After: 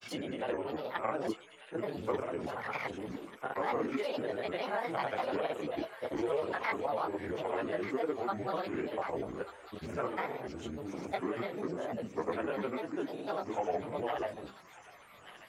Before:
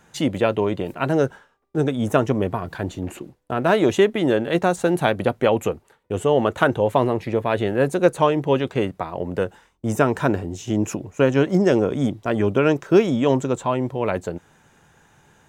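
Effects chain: short-time reversal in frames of 0.112 s; de-hum 82.34 Hz, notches 32; chorus voices 4, 0.71 Hz, delay 24 ms, depth 4.3 ms; compressor 10:1, threshold -34 dBFS, peak gain reduction 18 dB; whine 9000 Hz -63 dBFS; three-band isolator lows -14 dB, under 350 Hz, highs -13 dB, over 2800 Hz; grains, pitch spread up and down by 7 st; thin delay 1.189 s, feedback 50%, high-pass 2100 Hz, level -5.5 dB; gain +6.5 dB

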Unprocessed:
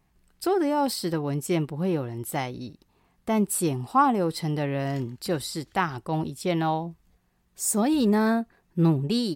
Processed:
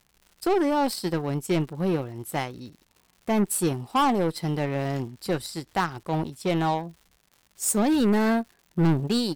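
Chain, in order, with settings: added harmonics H 7 -19 dB, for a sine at -9 dBFS; crackle 180/s -52 dBFS; soft clip -25 dBFS, distortion -6 dB; gain +8.5 dB

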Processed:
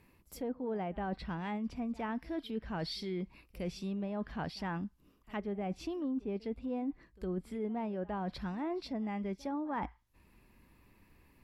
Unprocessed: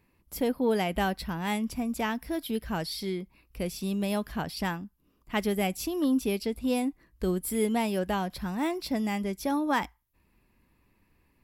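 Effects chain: treble ducked by the level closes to 1300 Hz, closed at -24.5 dBFS; reverse; compressor 5:1, threshold -39 dBFS, peak gain reduction 16 dB; reverse; pre-echo 61 ms -22 dB; gain +3.5 dB

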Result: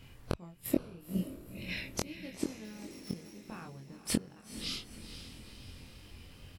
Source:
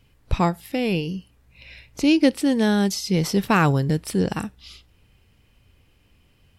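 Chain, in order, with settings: 2.64–3.38 sample sorter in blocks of 8 samples; wow and flutter 40 cents; flipped gate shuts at -18 dBFS, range -35 dB; 0.33–1.69 spectral gain 680–6700 Hz -8 dB; doubler 23 ms -3 dB; diffused feedback echo 0.477 s, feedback 53%, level -11 dB; gain +4 dB

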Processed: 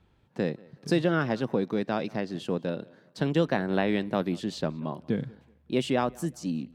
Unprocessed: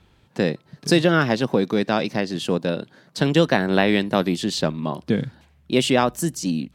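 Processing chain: high shelf 2500 Hz -8.5 dB; on a send: tape echo 0.186 s, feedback 34%, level -23 dB, low-pass 3700 Hz; on the sum: gain -7 dB

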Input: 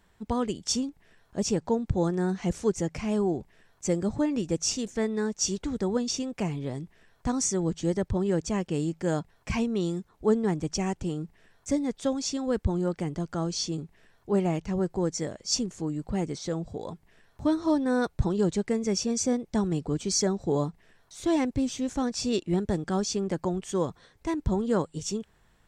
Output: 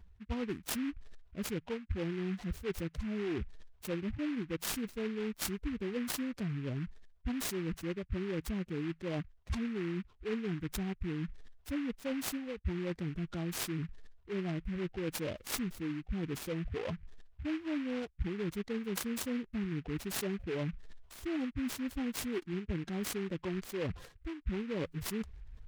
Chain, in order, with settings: spectral contrast raised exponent 2; resonant low shelf 100 Hz +9 dB, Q 1.5; reverse; compressor 6:1, threshold -41 dBFS, peak gain reduction 28 dB; reverse; noise-modulated delay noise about 1800 Hz, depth 0.1 ms; gain +6 dB

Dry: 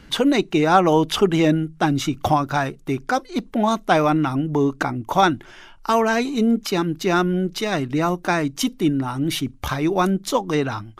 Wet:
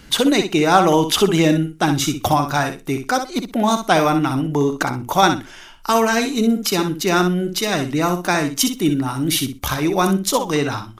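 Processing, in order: high shelf 4800 Hz +11.5 dB; 8.73–9.28 requantised 10-bit, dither none; on a send: feedback echo 62 ms, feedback 17%, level -8 dB; on the sum: gain +1 dB

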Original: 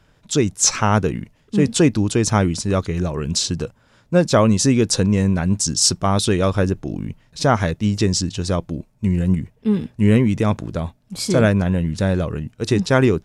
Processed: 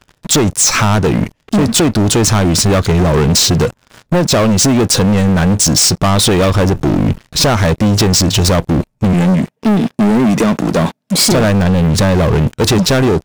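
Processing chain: 9.13–11.32 HPF 170 Hz 24 dB/oct; compressor 12:1, threshold -22 dBFS, peak gain reduction 14 dB; sample leveller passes 5; gain +4.5 dB

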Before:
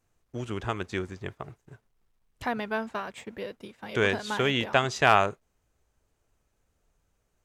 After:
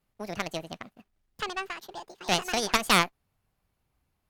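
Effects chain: speed mistake 45 rpm record played at 78 rpm; added harmonics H 4 -7 dB, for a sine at -5 dBFS; gain -3.5 dB

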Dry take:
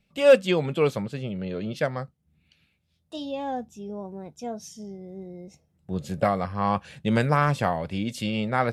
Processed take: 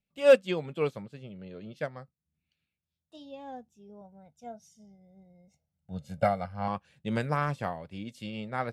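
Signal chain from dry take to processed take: 4.01–6.68 comb 1.4 ms, depth 76%; upward expander 1.5:1, over -41 dBFS; gain -2.5 dB

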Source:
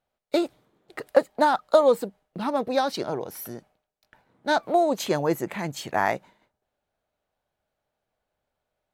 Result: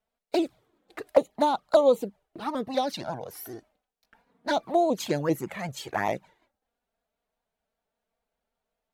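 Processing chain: envelope flanger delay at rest 4.4 ms, full sweep at -18 dBFS; shaped vibrato saw up 5.1 Hz, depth 100 cents

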